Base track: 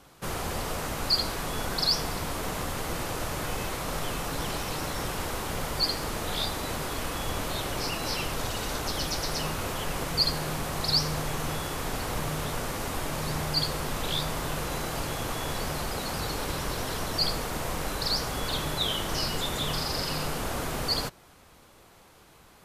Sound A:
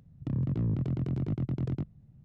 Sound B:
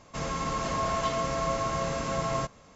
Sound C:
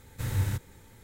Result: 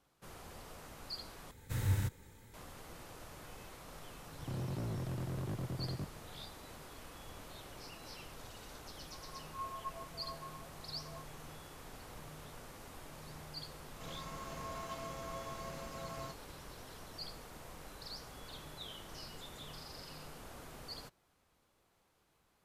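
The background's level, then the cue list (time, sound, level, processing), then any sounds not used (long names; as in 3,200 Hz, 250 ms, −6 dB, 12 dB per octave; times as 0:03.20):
base track −19.5 dB
0:01.51: overwrite with C −4.5 dB
0:04.21: mix in A −3 dB + hard clipping −34.5 dBFS
0:08.81: mix in B −16.5 dB + every bin expanded away from the loudest bin 4 to 1
0:13.86: mix in B −15 dB + mu-law and A-law mismatch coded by A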